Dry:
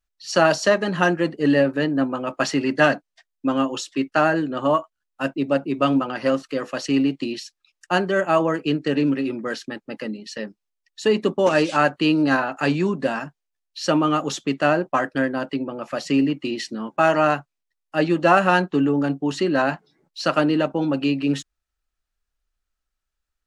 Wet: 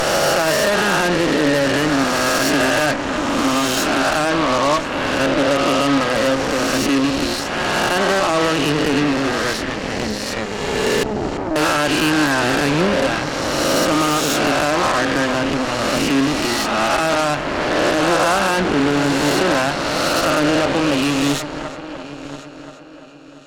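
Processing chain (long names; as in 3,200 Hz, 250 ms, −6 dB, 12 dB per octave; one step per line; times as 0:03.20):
peak hold with a rise ahead of every peak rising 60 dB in 2.09 s
0:11.03–0:11.56: formant resonators in series u
on a send: echo machine with several playback heads 343 ms, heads first and third, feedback 51%, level −17.5 dB
on the sum: brickwall limiter −9 dBFS, peak gain reduction 8.5 dB
in parallel at −11 dB: soft clipping −24 dBFS, distortion −7 dB
on the sum: harmonic generator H 8 −13 dB, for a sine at −8.5 dBFS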